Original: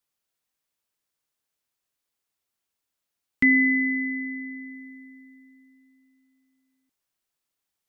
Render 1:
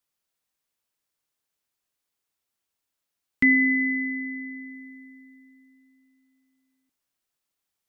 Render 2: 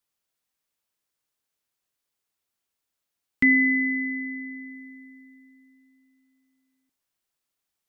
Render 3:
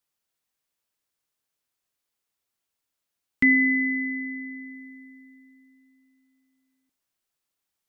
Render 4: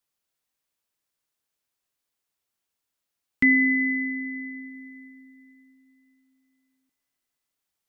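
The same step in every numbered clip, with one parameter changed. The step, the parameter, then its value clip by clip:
four-comb reverb, RT60: 1.7, 0.34, 0.71, 4 seconds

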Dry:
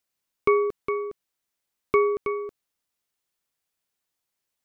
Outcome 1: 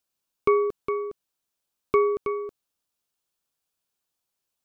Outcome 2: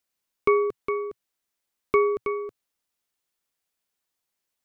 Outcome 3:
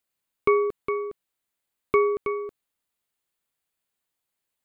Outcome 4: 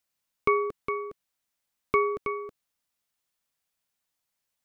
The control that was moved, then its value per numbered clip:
parametric band, centre frequency: 2,000, 120, 5,600, 380 Hertz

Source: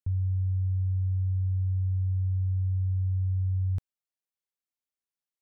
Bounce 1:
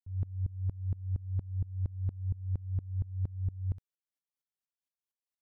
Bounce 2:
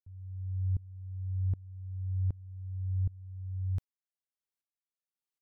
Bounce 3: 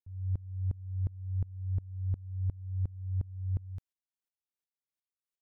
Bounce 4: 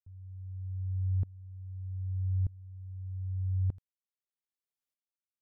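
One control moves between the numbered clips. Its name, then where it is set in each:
tremolo with a ramp in dB, speed: 4.3, 1.3, 2.8, 0.81 Hertz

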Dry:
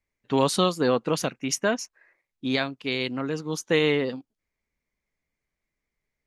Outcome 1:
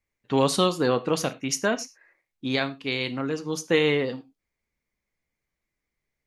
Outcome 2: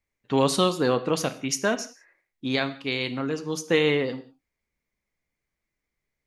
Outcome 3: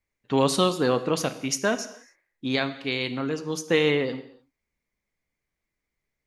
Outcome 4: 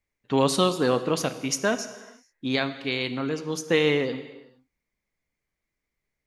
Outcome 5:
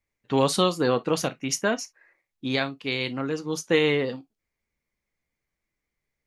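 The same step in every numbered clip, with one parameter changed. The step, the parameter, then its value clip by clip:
reverb whose tail is shaped and stops, gate: 130, 210, 320, 490, 80 milliseconds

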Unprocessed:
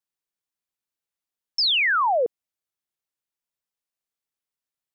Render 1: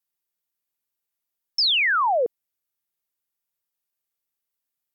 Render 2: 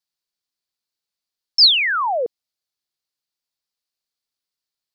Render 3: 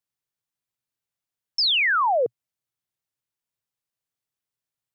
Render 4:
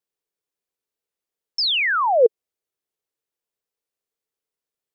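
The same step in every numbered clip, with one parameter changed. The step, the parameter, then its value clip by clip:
parametric band, centre frequency: 16,000, 4,500, 120, 440 Hertz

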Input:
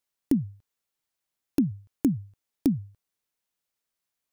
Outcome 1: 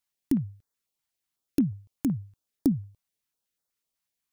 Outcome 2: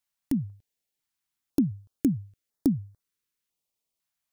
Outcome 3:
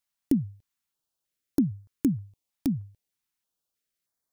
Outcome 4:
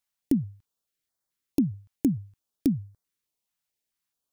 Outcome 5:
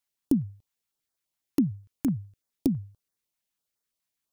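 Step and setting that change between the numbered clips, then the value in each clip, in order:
notch on a step sequencer, speed: 8.1, 2, 3.2, 4.6, 12 Hertz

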